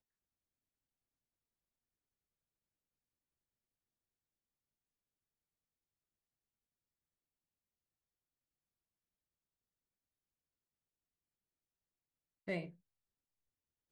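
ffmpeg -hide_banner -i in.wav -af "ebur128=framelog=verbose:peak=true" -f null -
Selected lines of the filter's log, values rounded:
Integrated loudness:
  I:         -44.3 LUFS
  Threshold: -54.9 LUFS
Loudness range:
  LRA:         0.4 LU
  Threshold: -71.5 LUFS
  LRA low:   -51.6 LUFS
  LRA high:  -51.3 LUFS
True peak:
  Peak:      -27.3 dBFS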